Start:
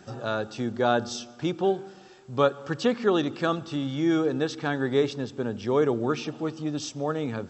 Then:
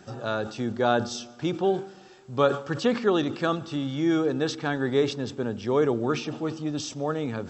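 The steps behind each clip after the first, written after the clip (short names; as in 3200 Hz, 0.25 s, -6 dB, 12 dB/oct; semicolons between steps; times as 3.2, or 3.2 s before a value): sustainer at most 130 dB/s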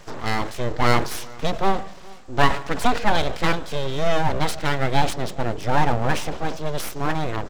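full-wave rectifier; outdoor echo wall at 71 m, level -24 dB; gain +7 dB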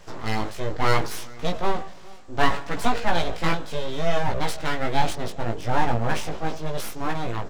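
chorus 0.69 Hz, delay 17 ms, depth 2 ms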